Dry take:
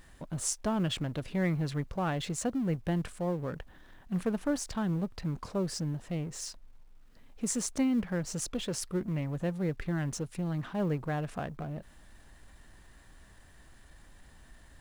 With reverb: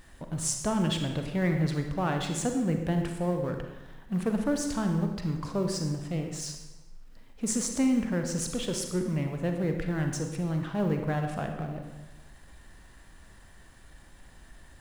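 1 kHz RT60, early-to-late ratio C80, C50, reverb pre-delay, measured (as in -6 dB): 1.1 s, 7.5 dB, 5.0 dB, 36 ms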